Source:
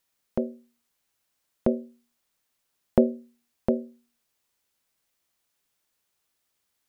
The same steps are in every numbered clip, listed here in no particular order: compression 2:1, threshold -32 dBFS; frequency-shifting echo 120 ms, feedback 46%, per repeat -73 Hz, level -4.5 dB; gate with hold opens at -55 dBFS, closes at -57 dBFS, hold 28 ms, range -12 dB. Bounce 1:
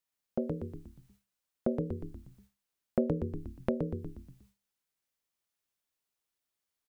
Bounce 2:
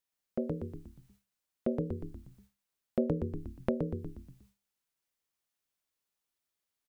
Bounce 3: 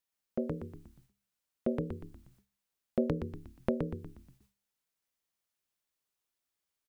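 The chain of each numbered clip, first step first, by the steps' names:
frequency-shifting echo > gate with hold > compression; frequency-shifting echo > compression > gate with hold; compression > frequency-shifting echo > gate with hold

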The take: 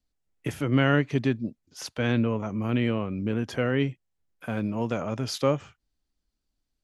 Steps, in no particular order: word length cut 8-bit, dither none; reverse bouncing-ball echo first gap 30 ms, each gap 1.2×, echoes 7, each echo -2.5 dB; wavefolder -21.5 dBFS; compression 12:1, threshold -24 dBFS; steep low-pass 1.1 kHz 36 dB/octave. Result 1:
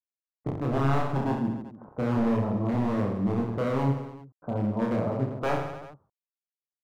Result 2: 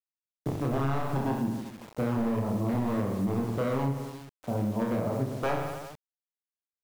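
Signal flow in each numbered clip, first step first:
word length cut > steep low-pass > wavefolder > compression > reverse bouncing-ball echo; steep low-pass > wavefolder > reverse bouncing-ball echo > word length cut > compression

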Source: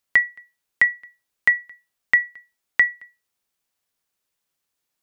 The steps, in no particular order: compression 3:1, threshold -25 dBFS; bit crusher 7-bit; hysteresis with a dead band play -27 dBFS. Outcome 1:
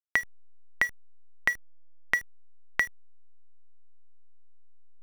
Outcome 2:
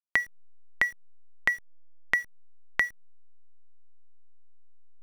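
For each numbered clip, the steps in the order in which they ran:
compression > bit crusher > hysteresis with a dead band; bit crusher > hysteresis with a dead band > compression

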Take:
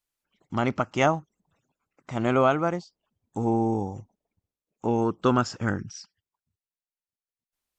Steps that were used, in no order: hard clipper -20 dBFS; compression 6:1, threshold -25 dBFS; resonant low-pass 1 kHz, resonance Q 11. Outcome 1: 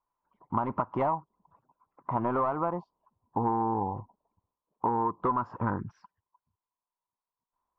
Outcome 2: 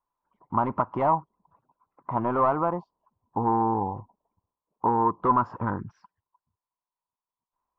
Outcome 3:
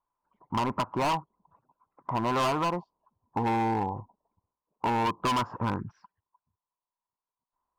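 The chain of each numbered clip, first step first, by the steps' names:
hard clipper > resonant low-pass > compression; hard clipper > compression > resonant low-pass; resonant low-pass > hard clipper > compression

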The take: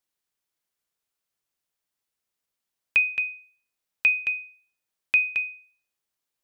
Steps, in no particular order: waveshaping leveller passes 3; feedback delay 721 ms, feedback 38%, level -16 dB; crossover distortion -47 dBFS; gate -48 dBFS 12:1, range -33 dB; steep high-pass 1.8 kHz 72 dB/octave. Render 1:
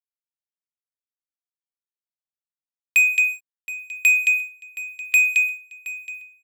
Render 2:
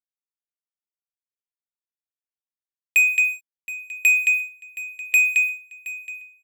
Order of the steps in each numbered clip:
steep high-pass > gate > waveshaping leveller > crossover distortion > feedback delay; waveshaping leveller > crossover distortion > steep high-pass > gate > feedback delay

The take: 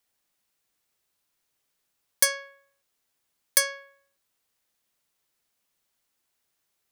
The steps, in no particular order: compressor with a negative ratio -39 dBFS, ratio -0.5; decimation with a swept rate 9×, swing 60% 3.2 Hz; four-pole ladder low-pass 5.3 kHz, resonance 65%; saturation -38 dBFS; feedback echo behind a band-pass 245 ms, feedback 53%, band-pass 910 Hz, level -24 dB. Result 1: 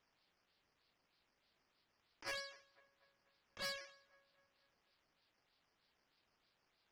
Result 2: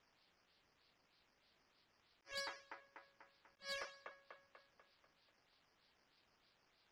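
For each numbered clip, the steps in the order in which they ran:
decimation with a swept rate > four-pole ladder low-pass > compressor with a negative ratio > feedback echo behind a band-pass > saturation; decimation with a swept rate > feedback echo behind a band-pass > compressor with a negative ratio > four-pole ladder low-pass > saturation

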